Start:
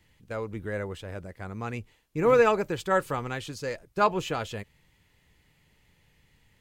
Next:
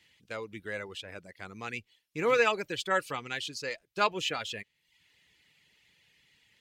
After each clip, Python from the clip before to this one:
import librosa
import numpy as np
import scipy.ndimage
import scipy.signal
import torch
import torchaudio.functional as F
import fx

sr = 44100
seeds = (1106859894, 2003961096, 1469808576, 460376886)

y = fx.weighting(x, sr, curve='D')
y = fx.dereverb_blind(y, sr, rt60_s=0.64)
y = y * librosa.db_to_amplitude(-5.0)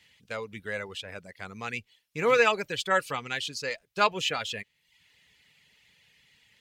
y = fx.peak_eq(x, sr, hz=330.0, db=-10.0, octaves=0.25)
y = y * librosa.db_to_amplitude(3.5)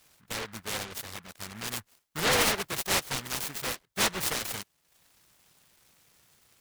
y = 10.0 ** (-18.5 / 20.0) * np.tanh(x / 10.0 ** (-18.5 / 20.0))
y = fx.noise_mod_delay(y, sr, seeds[0], noise_hz=1300.0, depth_ms=0.44)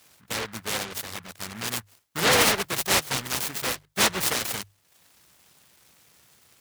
y = scipy.signal.sosfilt(scipy.signal.butter(2, 48.0, 'highpass', fs=sr, output='sos'), x)
y = fx.hum_notches(y, sr, base_hz=50, count=3)
y = y * librosa.db_to_amplitude(5.0)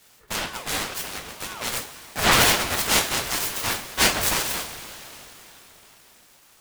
y = fx.rev_double_slope(x, sr, seeds[1], early_s=0.29, late_s=4.0, knee_db=-19, drr_db=-0.5)
y = fx.ring_lfo(y, sr, carrier_hz=770.0, swing_pct=70, hz=2.0)
y = y * librosa.db_to_amplitude(2.5)